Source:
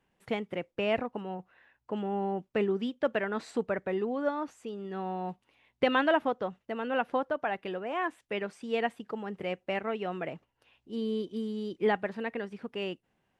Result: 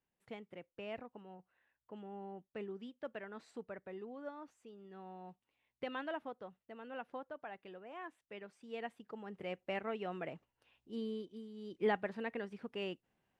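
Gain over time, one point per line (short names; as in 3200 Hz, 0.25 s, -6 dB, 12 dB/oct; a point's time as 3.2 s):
8.51 s -16 dB
9.66 s -7 dB
10.98 s -7 dB
11.5 s -16.5 dB
11.83 s -6 dB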